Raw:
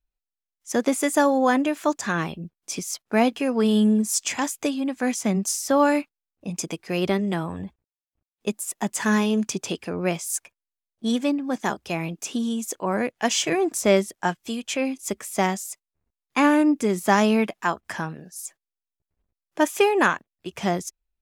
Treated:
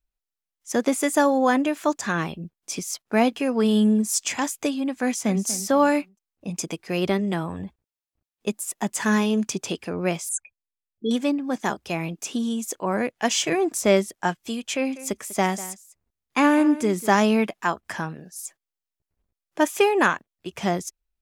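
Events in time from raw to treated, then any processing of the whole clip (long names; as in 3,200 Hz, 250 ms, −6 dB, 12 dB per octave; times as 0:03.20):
0:05.04–0:05.46: delay throw 240 ms, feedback 30%, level −13.5 dB
0:10.29–0:11.11: spectral envelope exaggerated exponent 3
0:14.73–0:17.15: single-tap delay 196 ms −16.5 dB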